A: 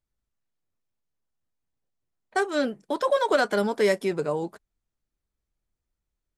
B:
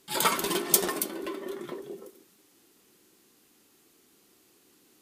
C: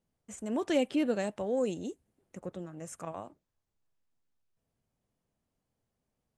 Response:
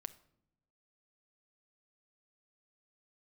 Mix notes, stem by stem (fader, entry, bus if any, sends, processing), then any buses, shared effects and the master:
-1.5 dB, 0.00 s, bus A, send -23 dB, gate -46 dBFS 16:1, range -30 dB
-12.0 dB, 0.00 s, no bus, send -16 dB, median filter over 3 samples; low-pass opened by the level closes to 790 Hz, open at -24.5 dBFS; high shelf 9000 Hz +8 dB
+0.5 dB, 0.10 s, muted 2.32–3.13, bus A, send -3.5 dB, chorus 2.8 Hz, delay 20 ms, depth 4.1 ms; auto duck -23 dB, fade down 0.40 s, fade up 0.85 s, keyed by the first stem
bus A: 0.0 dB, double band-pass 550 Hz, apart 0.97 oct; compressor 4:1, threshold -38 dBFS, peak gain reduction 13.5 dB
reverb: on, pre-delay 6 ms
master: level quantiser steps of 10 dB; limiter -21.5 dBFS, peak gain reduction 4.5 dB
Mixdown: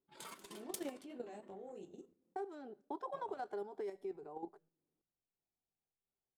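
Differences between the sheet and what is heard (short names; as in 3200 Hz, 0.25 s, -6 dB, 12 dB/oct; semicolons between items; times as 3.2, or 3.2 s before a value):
stem B -12.0 dB -> -22.5 dB; stem C +0.5 dB -> -6.0 dB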